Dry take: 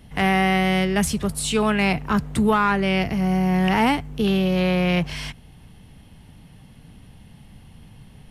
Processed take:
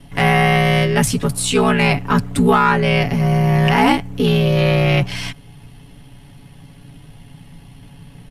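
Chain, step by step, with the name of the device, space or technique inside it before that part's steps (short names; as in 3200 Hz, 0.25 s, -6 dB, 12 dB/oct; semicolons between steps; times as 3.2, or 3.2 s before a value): ring-modulated robot voice (ring modulator 31 Hz; comb 7.1 ms, depth 75%); gain +6.5 dB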